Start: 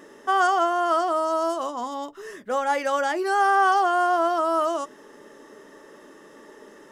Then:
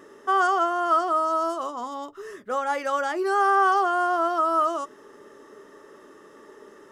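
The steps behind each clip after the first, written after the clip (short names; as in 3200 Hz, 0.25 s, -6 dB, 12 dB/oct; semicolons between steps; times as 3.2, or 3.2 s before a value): thirty-one-band EQ 100 Hz +12 dB, 400 Hz +6 dB, 1250 Hz +8 dB; gain -4 dB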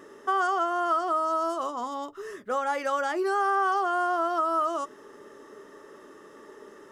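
compressor 2.5:1, threshold -24 dBFS, peak gain reduction 5.5 dB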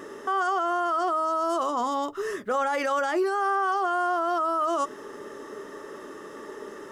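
limiter -26.5 dBFS, peak gain reduction 11 dB; gain +8 dB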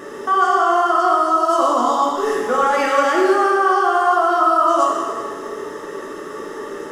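plate-style reverb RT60 1.8 s, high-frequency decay 0.95×, DRR -3.5 dB; gain +5 dB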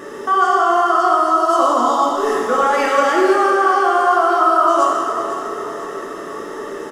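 feedback echo 0.5 s, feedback 48%, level -11.5 dB; gain +1 dB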